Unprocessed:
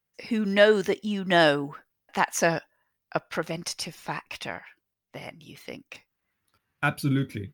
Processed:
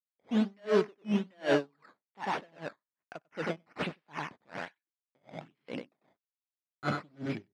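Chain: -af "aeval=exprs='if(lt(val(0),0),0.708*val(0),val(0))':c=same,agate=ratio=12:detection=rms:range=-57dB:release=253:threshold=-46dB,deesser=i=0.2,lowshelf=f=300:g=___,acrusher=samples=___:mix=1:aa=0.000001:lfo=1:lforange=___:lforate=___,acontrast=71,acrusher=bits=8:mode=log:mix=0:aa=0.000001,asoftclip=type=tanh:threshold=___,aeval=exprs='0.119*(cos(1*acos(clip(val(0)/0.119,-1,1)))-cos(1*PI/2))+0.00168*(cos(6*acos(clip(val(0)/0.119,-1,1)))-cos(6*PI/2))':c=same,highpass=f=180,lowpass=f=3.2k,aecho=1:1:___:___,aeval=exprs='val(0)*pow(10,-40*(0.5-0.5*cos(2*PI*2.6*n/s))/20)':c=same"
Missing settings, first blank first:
2.5, 11, 11, 1.2, -18.5dB, 96, 0.447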